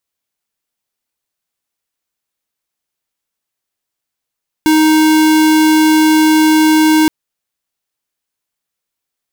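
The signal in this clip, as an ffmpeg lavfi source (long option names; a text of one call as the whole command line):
ffmpeg -f lavfi -i "aevalsrc='0.355*(2*lt(mod(312*t,1),0.5)-1)':duration=2.42:sample_rate=44100" out.wav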